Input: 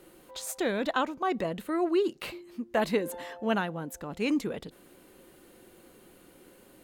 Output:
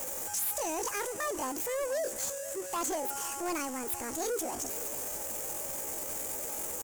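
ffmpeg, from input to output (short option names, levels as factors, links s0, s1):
-filter_complex "[0:a]aeval=exprs='val(0)+0.5*0.0266*sgn(val(0))':c=same,highshelf=f=3400:t=q:w=3:g=11,asoftclip=type=hard:threshold=0.0668,asetrate=70004,aresample=44100,atempo=0.629961,asplit=2[s0][s1];[s1]aecho=0:1:474:0.158[s2];[s0][s2]amix=inputs=2:normalize=0,volume=0.501"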